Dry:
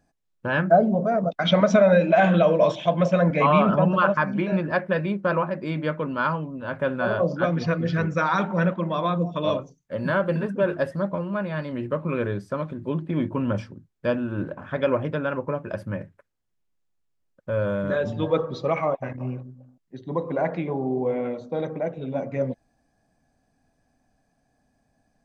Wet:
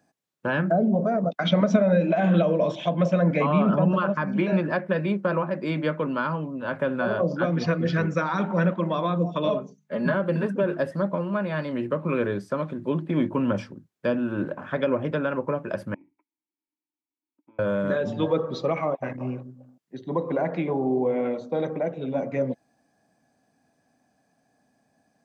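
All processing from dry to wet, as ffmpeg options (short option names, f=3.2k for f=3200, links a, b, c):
-filter_complex "[0:a]asettb=1/sr,asplit=3[a][b][c];[a]atrim=end=9.484[d];[b]atrim=start=9.48:end=10.14,asetpts=PTS-STARTPTS,afade=t=in:d=0.004:c=qsin,afade=t=out:st=0.656:d=0.004:c=qsin,highshelf=f=4.4k:g=-7.5,bandreject=f=50:t=h:w=6,bandreject=f=100:t=h:w=6,bandreject=f=150:t=h:w=6,bandreject=f=200:t=h:w=6,bandreject=f=250:t=h:w=6,aecho=1:1:4.8:0.8,atrim=end_sample=29106[e];[c]atrim=start=10.136[f];[d][e]acrossfade=d=0.004:c1=hsin:c2=qsin[g];[g][f]acrossfade=d=0.004:c1=qsin:c2=hsin,asettb=1/sr,asplit=3[h][i][j];[h]atrim=end=15.944[k];[i]atrim=start=15.94:end=17.59,asetpts=PTS-STARTPTS,afade=t=in:d=0.004:c=qsin,afade=t=out:st=1.646:d=0.004:c=qsin,aecho=1:1:3.1:0.48,atrim=end_sample=72765,acompressor=threshold=-38dB:ratio=5:attack=3.2:release=140:knee=1:detection=peak,asplit=3[l][m][n];[l]bandpass=f=300:t=q:w=8,volume=0dB[o];[m]bandpass=f=870:t=q:w=8,volume=-6dB[p];[n]bandpass=f=2.24k:t=q:w=8,volume=-9dB[q];[o][p][q]amix=inputs=3:normalize=0[r];[j]atrim=start=17.586[s];[k][r]acrossfade=d=0.004:c1=hsin:c2=qsin[t];[t][s]acrossfade=d=0.004:c1=qsin:c2=hsin,highpass=160,acrossover=split=390[u][v];[v]acompressor=threshold=-27dB:ratio=6[w];[u][w]amix=inputs=2:normalize=0,volume=2.5dB"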